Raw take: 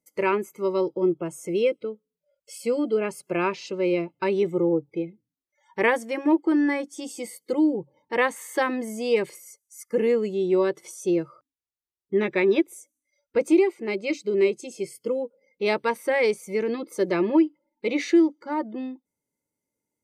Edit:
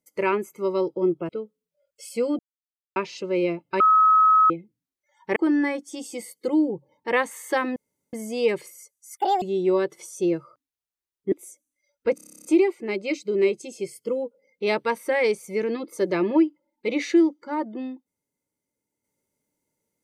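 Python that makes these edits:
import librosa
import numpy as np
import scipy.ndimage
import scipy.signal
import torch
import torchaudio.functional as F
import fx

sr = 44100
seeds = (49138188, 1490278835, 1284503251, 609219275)

y = fx.edit(x, sr, fx.cut(start_s=1.29, length_s=0.49),
    fx.silence(start_s=2.88, length_s=0.57),
    fx.bleep(start_s=4.29, length_s=0.7, hz=1280.0, db=-13.0),
    fx.cut(start_s=5.85, length_s=0.56),
    fx.insert_room_tone(at_s=8.81, length_s=0.37),
    fx.speed_span(start_s=9.85, length_s=0.42, speed=1.69),
    fx.cut(start_s=12.17, length_s=0.44),
    fx.stutter(start_s=13.44, slice_s=0.03, count=11), tone=tone)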